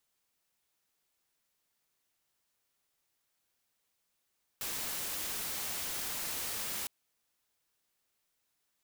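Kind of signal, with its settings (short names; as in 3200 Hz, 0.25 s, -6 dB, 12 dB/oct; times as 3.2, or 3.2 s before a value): noise white, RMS -37.5 dBFS 2.26 s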